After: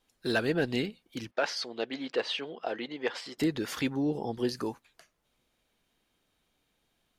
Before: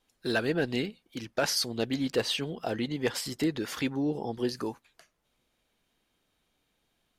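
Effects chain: 1.31–3.38 BPF 400–3600 Hz

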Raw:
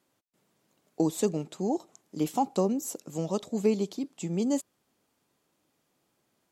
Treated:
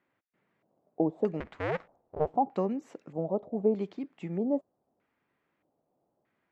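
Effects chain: 1.4–2.35 cycle switcher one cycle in 2, inverted; LFO low-pass square 0.8 Hz 690–2000 Hz; gain -4 dB

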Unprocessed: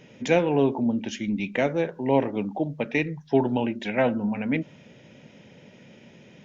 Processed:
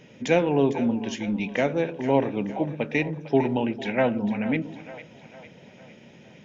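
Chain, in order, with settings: split-band echo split 480 Hz, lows 0.119 s, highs 0.453 s, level -13 dB

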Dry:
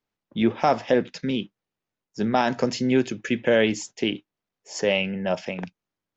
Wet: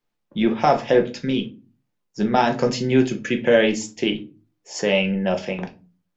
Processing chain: shoebox room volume 140 m³, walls furnished, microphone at 0.88 m; gain +1.5 dB

